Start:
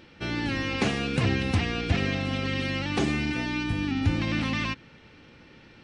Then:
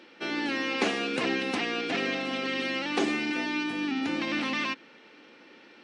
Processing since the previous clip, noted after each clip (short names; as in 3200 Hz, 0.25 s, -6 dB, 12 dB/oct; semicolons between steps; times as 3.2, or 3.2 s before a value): HPF 260 Hz 24 dB/oct; high shelf 9100 Hz -6.5 dB; gain +1 dB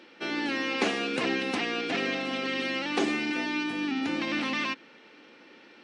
nothing audible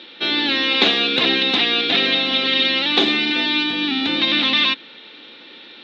synth low-pass 3700 Hz, resonance Q 11; gain +6.5 dB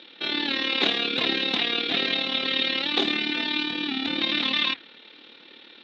flange 1.3 Hz, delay 1.2 ms, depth 9.1 ms, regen -86%; AM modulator 37 Hz, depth 45%